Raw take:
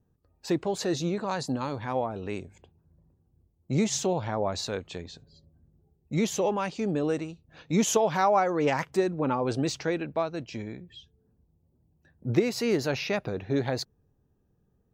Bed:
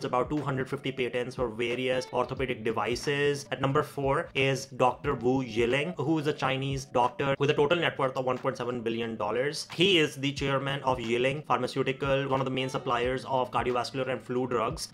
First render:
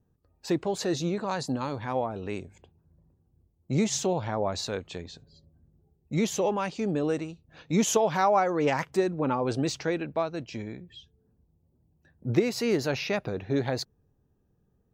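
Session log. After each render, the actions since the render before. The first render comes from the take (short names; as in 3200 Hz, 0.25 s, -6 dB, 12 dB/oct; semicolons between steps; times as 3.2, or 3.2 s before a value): nothing audible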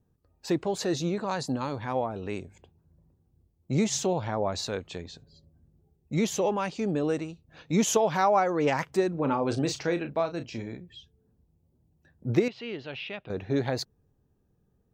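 9.11–10.78 doubler 35 ms -9.5 dB; 12.48–13.3 ladder low-pass 3400 Hz, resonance 70%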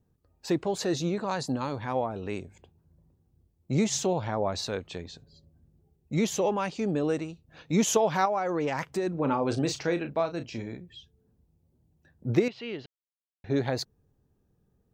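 4.48–5.09 notch 7000 Hz; 8.25–9.07 compressor, threshold -24 dBFS; 12.86–13.44 mute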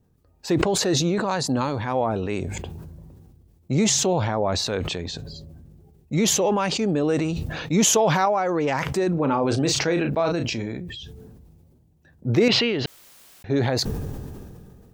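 in parallel at -1 dB: limiter -20 dBFS, peak gain reduction 9 dB; on the sum: sustainer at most 25 dB/s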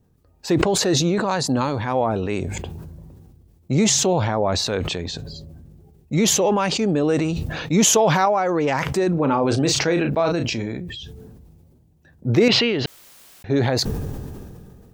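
gain +2.5 dB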